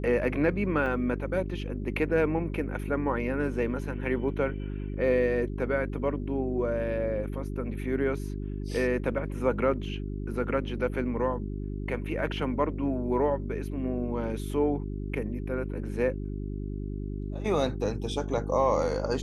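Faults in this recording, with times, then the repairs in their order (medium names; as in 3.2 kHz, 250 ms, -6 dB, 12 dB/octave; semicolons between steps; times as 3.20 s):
hum 50 Hz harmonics 8 -34 dBFS
0.86 s: dropout 2.2 ms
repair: de-hum 50 Hz, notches 8; interpolate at 0.86 s, 2.2 ms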